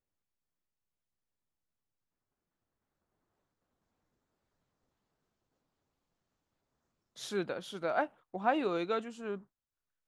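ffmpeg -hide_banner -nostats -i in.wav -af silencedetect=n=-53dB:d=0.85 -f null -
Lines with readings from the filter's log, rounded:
silence_start: 0.00
silence_end: 7.16 | silence_duration: 7.16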